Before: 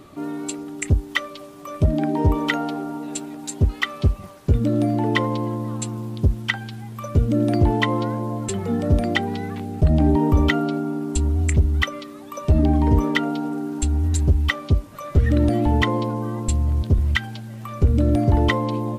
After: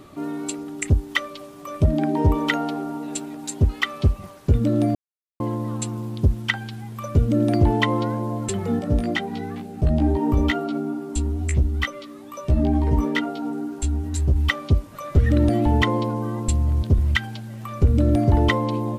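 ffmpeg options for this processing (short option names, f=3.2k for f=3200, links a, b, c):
-filter_complex "[0:a]asettb=1/sr,asplit=3[a][b][c];[a]atrim=end=8.794[d];[b]atrim=start=8.79:end=14.36,asetpts=PTS-STARTPTS,afade=t=in:d=0.004:c=qsin,afade=t=out:st=5.566:d=0.004:c=qsin,flanger=delay=15.5:depth=2.2:speed=2.2[e];[c]atrim=start=14.356[f];[d][e]acrossfade=d=0.004:c1=hsin:c2=qsin[g];[g][f]acrossfade=d=0.004:c1=qsin:c2=hsin,asplit=3[h][i][j];[h]atrim=end=4.95,asetpts=PTS-STARTPTS,afade=t=out:st=4.946:d=0.004:c=hsin[k];[i]atrim=start=4.95:end=5.4,asetpts=PTS-STARTPTS,volume=0[l];[j]atrim=start=5.4,asetpts=PTS-STARTPTS,afade=t=in:d=0.004:c=hsin[m];[k][l][m]concat=n=3:v=0:a=1"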